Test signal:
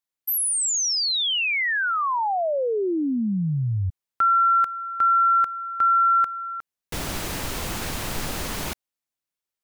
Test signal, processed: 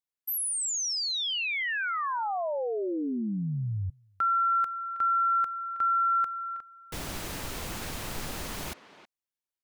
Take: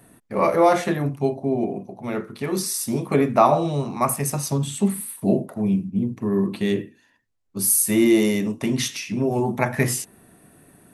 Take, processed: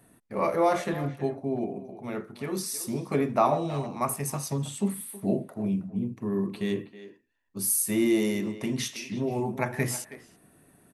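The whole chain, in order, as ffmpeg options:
ffmpeg -i in.wav -filter_complex "[0:a]asplit=2[link_01][link_02];[link_02]adelay=320,highpass=300,lowpass=3400,asoftclip=type=hard:threshold=-14dB,volume=-13dB[link_03];[link_01][link_03]amix=inputs=2:normalize=0,volume=-7dB" out.wav

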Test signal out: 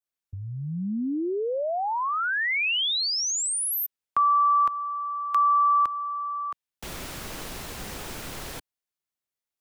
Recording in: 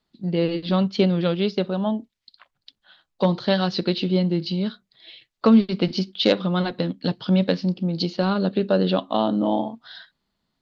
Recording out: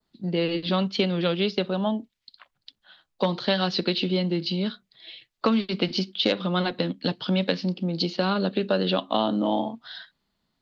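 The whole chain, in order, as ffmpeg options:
ffmpeg -i in.wav -filter_complex "[0:a]adynamicequalizer=threshold=0.00891:dfrequency=2800:dqfactor=1.1:tfrequency=2800:tqfactor=1.1:attack=5:release=100:ratio=0.375:range=2:mode=boostabove:tftype=bell,acrossover=split=180|950[link_01][link_02][link_03];[link_01]acompressor=threshold=-38dB:ratio=4[link_04];[link_02]acompressor=threshold=-22dB:ratio=4[link_05];[link_03]acompressor=threshold=-23dB:ratio=4[link_06];[link_04][link_05][link_06]amix=inputs=3:normalize=0" out.wav

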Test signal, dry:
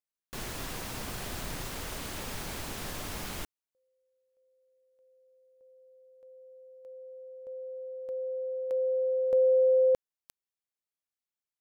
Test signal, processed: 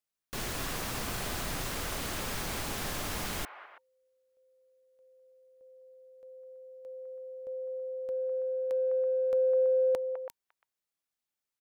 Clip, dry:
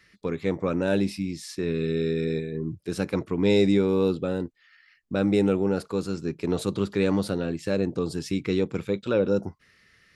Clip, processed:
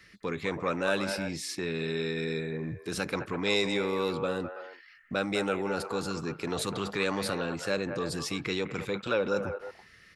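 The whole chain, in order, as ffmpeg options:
ffmpeg -i in.wav -filter_complex "[0:a]bandreject=frequency=930:width=29,acrossover=split=660|2100[link_01][link_02][link_03];[link_01]acompressor=threshold=-34dB:ratio=12:attack=1.1:release=24:knee=6[link_04];[link_02]aecho=1:1:205|329:0.562|0.398[link_05];[link_04][link_05][link_03]amix=inputs=3:normalize=0,volume=3dB" out.wav

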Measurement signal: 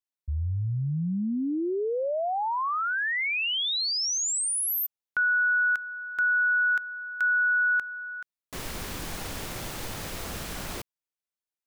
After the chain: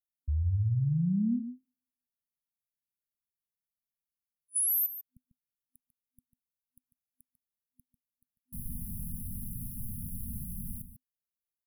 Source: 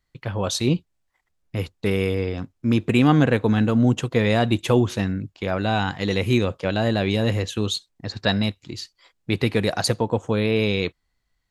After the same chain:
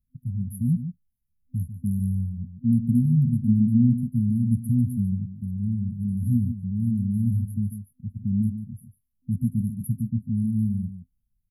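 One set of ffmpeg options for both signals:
ffmpeg -i in.wav -filter_complex "[0:a]afftfilt=real='re*(1-between(b*sr/4096,250,9800))':imag='im*(1-between(b*sr/4096,250,9800))':win_size=4096:overlap=0.75,asplit=2[link_01][link_02];[link_02]adelay=145.8,volume=-10dB,highshelf=frequency=4000:gain=-3.28[link_03];[link_01][link_03]amix=inputs=2:normalize=0" out.wav

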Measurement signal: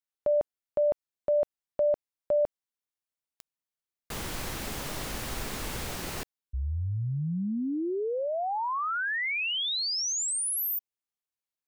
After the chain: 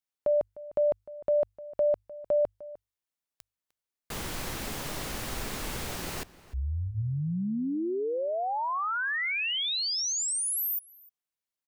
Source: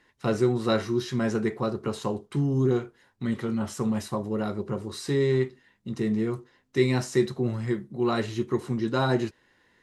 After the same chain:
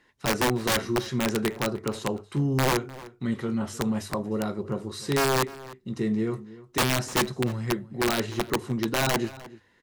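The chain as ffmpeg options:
ffmpeg -i in.wav -filter_complex "[0:a]bandreject=frequency=50:width_type=h:width=6,bandreject=frequency=100:width_type=h:width=6,aeval=exprs='(mod(7.08*val(0)+1,2)-1)/7.08':channel_layout=same,asplit=2[link_01][link_02];[link_02]adelay=303.2,volume=-18dB,highshelf=frequency=4000:gain=-6.82[link_03];[link_01][link_03]amix=inputs=2:normalize=0" out.wav

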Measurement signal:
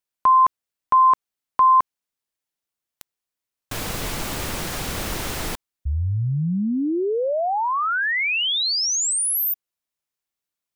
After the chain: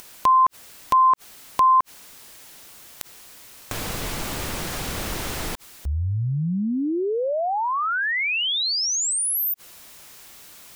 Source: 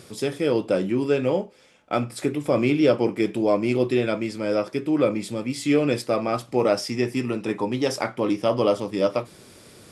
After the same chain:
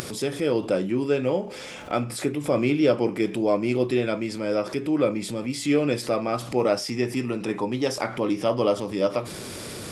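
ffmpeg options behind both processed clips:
ffmpeg -i in.wav -af "acompressor=mode=upward:threshold=-27dB:ratio=4:attack=3.3:release=36:knee=2.83:detection=peak,volume=-1.5dB" out.wav

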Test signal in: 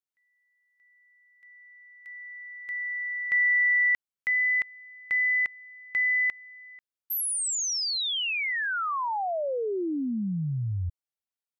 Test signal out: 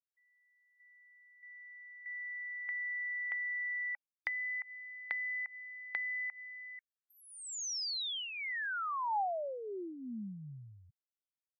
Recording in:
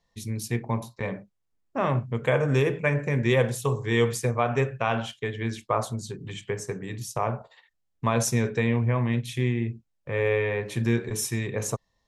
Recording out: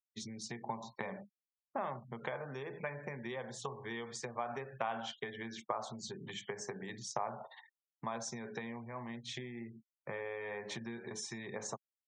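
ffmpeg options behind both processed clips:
ffmpeg -i in.wav -af "acompressor=threshold=-37dB:ratio=10:attack=18:release=191:knee=1:detection=peak,highpass=frequency=170:width=0.5412,highpass=frequency=170:width=1.3066,equalizer=frequency=170:width_type=q:width=4:gain=-6,equalizer=frequency=290:width_type=q:width=4:gain=-10,equalizer=frequency=470:width_type=q:width=4:gain=-6,equalizer=frequency=820:width_type=q:width=4:gain=6,equalizer=frequency=2600:width_type=q:width=4:gain=-7,lowpass=frequency=6700:width=0.5412,lowpass=frequency=6700:width=1.3066,afftfilt=real='re*gte(hypot(re,im),0.00158)':imag='im*gte(hypot(re,im),0.00158)':win_size=1024:overlap=0.75,volume=1dB" out.wav

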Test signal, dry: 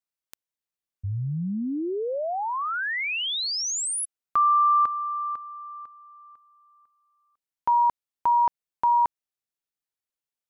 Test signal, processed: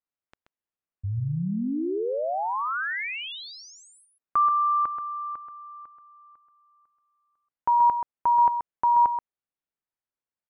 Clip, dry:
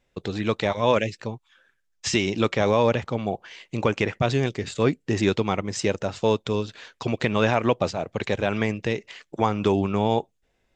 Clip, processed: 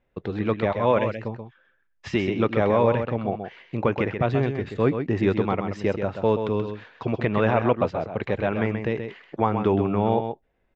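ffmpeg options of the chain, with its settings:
ffmpeg -i in.wav -filter_complex "[0:a]lowpass=2000,asplit=2[link_01][link_02];[link_02]aecho=0:1:130:0.422[link_03];[link_01][link_03]amix=inputs=2:normalize=0" out.wav

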